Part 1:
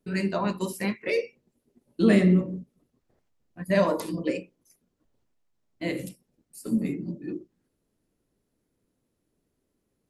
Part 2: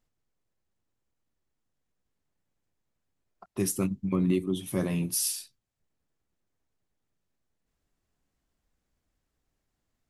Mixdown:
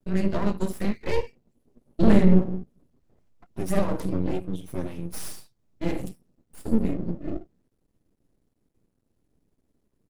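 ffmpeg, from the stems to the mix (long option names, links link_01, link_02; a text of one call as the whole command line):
ffmpeg -i stem1.wav -i stem2.wav -filter_complex "[0:a]volume=-0.5dB[link_01];[1:a]asplit=2[link_02][link_03];[link_03]adelay=6.3,afreqshift=-1.8[link_04];[link_02][link_04]amix=inputs=2:normalize=1,volume=-2.5dB,asplit=2[link_05][link_06];[link_06]apad=whole_len=445075[link_07];[link_01][link_07]sidechaincompress=threshold=-36dB:ratio=8:attack=41:release=304[link_08];[link_08][link_05]amix=inputs=2:normalize=0,aeval=exprs='max(val(0),0)':channel_layout=same,lowshelf=frequency=460:gain=10.5" out.wav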